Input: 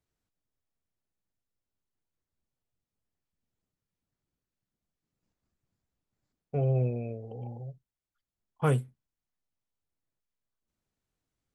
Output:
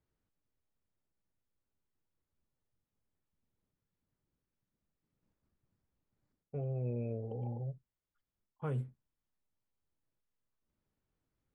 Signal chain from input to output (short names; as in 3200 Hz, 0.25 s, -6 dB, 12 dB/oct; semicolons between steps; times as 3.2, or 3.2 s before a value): LPF 1500 Hz 6 dB/oct; notch 710 Hz, Q 13; reverse; compressor 8:1, threshold -36 dBFS, peak gain reduction 14 dB; reverse; gain +2 dB